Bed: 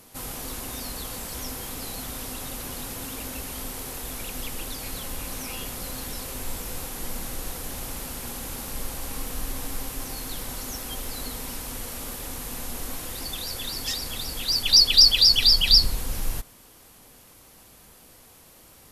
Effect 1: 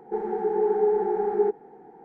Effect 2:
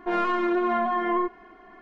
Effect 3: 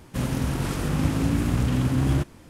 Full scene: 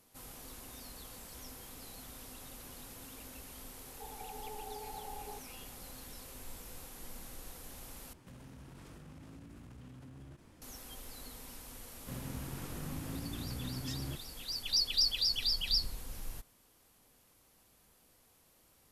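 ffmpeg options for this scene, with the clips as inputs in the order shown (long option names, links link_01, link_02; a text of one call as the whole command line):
ffmpeg -i bed.wav -i cue0.wav -i cue1.wav -i cue2.wav -filter_complex "[3:a]asplit=2[link_01][link_02];[0:a]volume=-15dB[link_03];[1:a]asuperpass=centerf=730:order=8:qfactor=1.3[link_04];[link_01]acompressor=threshold=-36dB:ratio=20:attack=0.28:release=37:knee=1:detection=rms[link_05];[link_02]alimiter=limit=-15dB:level=0:latency=1:release=71[link_06];[link_03]asplit=2[link_07][link_08];[link_07]atrim=end=8.134[link_09];[link_05]atrim=end=2.49,asetpts=PTS-STARTPTS,volume=-11dB[link_10];[link_08]atrim=start=10.616[link_11];[link_04]atrim=end=2.04,asetpts=PTS-STARTPTS,volume=-14.5dB,afade=type=in:duration=0.004:curve=hsin,afade=type=out:start_time=2.036:duration=0.004:curve=hsin,adelay=3880[link_12];[link_06]atrim=end=2.49,asetpts=PTS-STARTPTS,volume=-17dB,afade=type=in:duration=0.004:curve=hsin,afade=type=out:start_time=2.486:duration=0.004:curve=hsin,adelay=11930[link_13];[link_09][link_10]acrossfade=duration=0.004:curve1=hsin:curve2=hsin[link_14];[link_14][link_11]acrossfade=duration=0.004:curve1=hsin:curve2=hsin[link_15];[link_15][link_12][link_13]amix=inputs=3:normalize=0" out.wav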